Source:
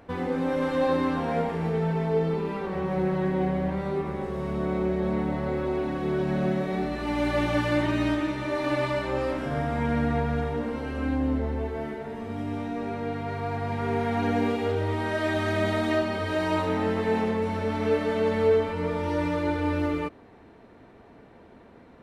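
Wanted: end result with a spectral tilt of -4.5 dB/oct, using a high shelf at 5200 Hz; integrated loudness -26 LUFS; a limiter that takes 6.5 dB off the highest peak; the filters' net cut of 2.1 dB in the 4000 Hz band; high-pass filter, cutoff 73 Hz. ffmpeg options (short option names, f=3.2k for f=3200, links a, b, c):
-af "highpass=73,equalizer=f=4k:t=o:g=-5,highshelf=f=5.2k:g=5.5,volume=2.5dB,alimiter=limit=-16.5dB:level=0:latency=1"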